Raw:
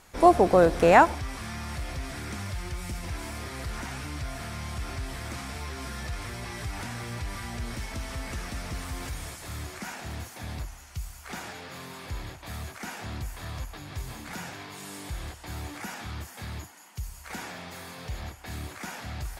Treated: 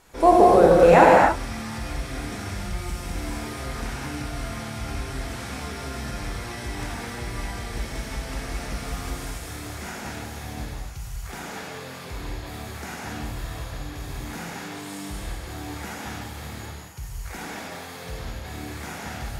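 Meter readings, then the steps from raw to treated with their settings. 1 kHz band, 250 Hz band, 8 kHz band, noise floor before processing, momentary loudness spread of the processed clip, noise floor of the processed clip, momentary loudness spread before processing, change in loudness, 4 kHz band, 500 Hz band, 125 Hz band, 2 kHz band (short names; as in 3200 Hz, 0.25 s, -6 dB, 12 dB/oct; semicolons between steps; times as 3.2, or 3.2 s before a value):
+5.0 dB, +4.5 dB, +3.0 dB, -47 dBFS, 20 LU, -38 dBFS, 17 LU, +5.5 dB, +3.0 dB, +6.0 dB, +3.0 dB, +3.5 dB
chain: bell 430 Hz +4 dB 0.97 oct; non-linear reverb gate 0.32 s flat, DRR -4.5 dB; gain -2.5 dB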